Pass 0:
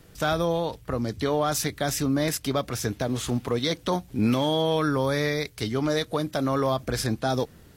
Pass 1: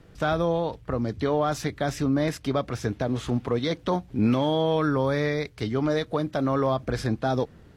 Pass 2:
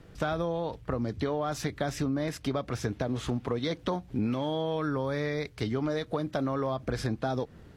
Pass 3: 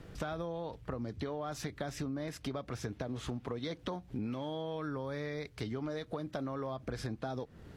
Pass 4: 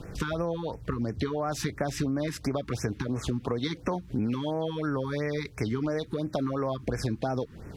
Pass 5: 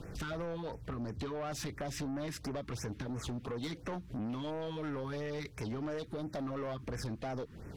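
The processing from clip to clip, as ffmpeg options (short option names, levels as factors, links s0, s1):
-af "aemphasis=mode=reproduction:type=75fm"
-af "acompressor=threshold=0.0501:ratio=6"
-af "acompressor=threshold=0.00631:ratio=2,volume=1.19"
-af "afftfilt=real='re*(1-between(b*sr/1024,570*pow(3800/570,0.5+0.5*sin(2*PI*2.9*pts/sr))/1.41,570*pow(3800/570,0.5+0.5*sin(2*PI*2.9*pts/sr))*1.41))':imag='im*(1-between(b*sr/1024,570*pow(3800/570,0.5+0.5*sin(2*PI*2.9*pts/sr))/1.41,570*pow(3800/570,0.5+0.5*sin(2*PI*2.9*pts/sr))*1.41))':win_size=1024:overlap=0.75,volume=2.82"
-af "asoftclip=type=tanh:threshold=0.0316,volume=0.631"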